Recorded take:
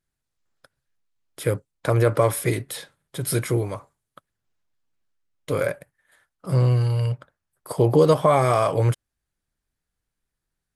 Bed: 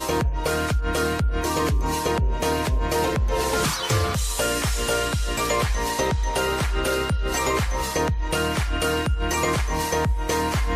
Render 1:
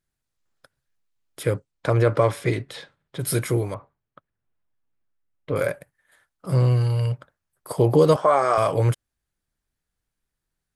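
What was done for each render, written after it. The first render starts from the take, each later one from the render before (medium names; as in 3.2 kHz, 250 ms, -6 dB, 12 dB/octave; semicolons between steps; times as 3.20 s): 1.42–3.18 s: low-pass 7.9 kHz -> 3.9 kHz; 3.74–5.56 s: distance through air 400 m; 8.16–8.58 s: cabinet simulation 380–7600 Hz, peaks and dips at 1.4 kHz +6 dB, 2.3 kHz -5 dB, 3.5 kHz -8 dB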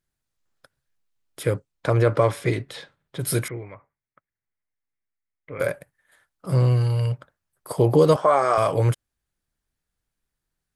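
3.48–5.60 s: four-pole ladder low-pass 2.3 kHz, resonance 70%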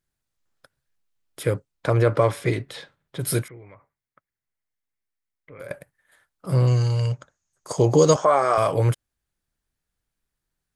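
3.42–5.71 s: compression 2:1, threshold -47 dBFS; 6.67–8.25 s: resonant low-pass 6.6 kHz, resonance Q 12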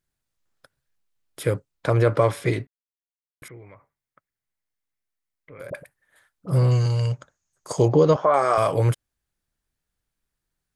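2.67–3.42 s: mute; 5.70–6.86 s: phase dispersion highs, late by 40 ms, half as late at 700 Hz; 7.88–8.34 s: distance through air 270 m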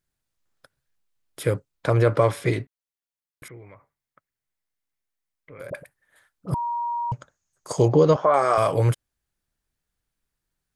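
6.54–7.12 s: bleep 948 Hz -24 dBFS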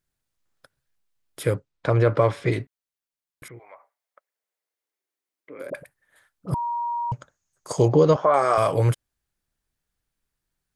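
1.55–2.52 s: distance through air 79 m; 3.58–5.72 s: resonant high-pass 780 Hz -> 270 Hz, resonance Q 2.5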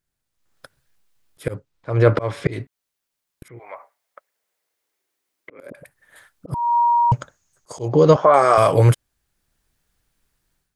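slow attack 312 ms; level rider gain up to 11 dB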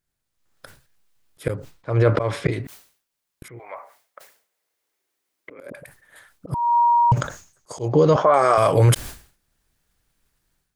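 peak limiter -7 dBFS, peak gain reduction 5.5 dB; decay stretcher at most 120 dB/s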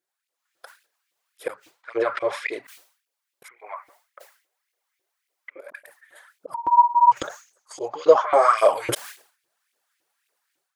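LFO high-pass saw up 3.6 Hz 340–2600 Hz; cancelling through-zero flanger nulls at 1.8 Hz, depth 4.9 ms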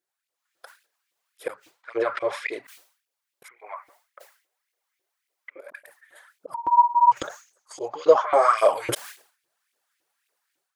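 trim -1.5 dB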